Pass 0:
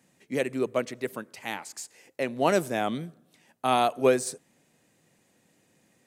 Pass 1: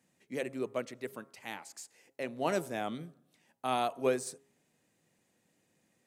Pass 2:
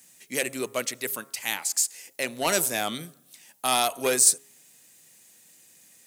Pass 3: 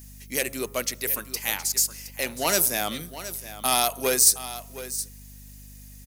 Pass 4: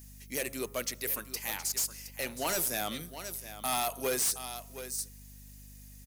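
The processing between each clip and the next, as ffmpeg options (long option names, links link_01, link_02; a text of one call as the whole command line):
ffmpeg -i in.wav -af "bandreject=frequency=136.7:width_type=h:width=4,bandreject=frequency=273.4:width_type=h:width=4,bandreject=frequency=410.1:width_type=h:width=4,bandreject=frequency=546.8:width_type=h:width=4,bandreject=frequency=683.5:width_type=h:width=4,bandreject=frequency=820.2:width_type=h:width=4,bandreject=frequency=956.9:width_type=h:width=4,bandreject=frequency=1093.6:width_type=h:width=4,bandreject=frequency=1230.3:width_type=h:width=4,bandreject=frequency=1367:width_type=h:width=4,volume=-8dB" out.wav
ffmpeg -i in.wav -af "asoftclip=type=tanh:threshold=-23dB,crystalizer=i=10:c=0,volume=3.5dB" out.wav
ffmpeg -i in.wav -af "aecho=1:1:718:0.211,aeval=exprs='val(0)+0.00562*(sin(2*PI*50*n/s)+sin(2*PI*2*50*n/s)/2+sin(2*PI*3*50*n/s)/3+sin(2*PI*4*50*n/s)/4+sin(2*PI*5*50*n/s)/5)':channel_layout=same,aexciter=amount=1.9:drive=1.5:freq=4600" out.wav
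ffmpeg -i in.wav -af "asoftclip=type=hard:threshold=-21dB,volume=-5.5dB" out.wav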